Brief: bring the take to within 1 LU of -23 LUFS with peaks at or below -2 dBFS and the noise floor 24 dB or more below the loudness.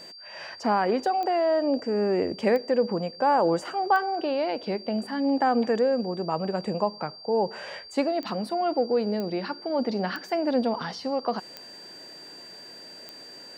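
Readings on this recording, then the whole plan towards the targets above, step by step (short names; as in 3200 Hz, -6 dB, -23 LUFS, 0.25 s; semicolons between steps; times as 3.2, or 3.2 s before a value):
clicks 8; steady tone 4700 Hz; tone level -43 dBFS; loudness -26.5 LUFS; peak -11.0 dBFS; loudness target -23.0 LUFS
-> de-click; notch 4700 Hz, Q 30; gain +3.5 dB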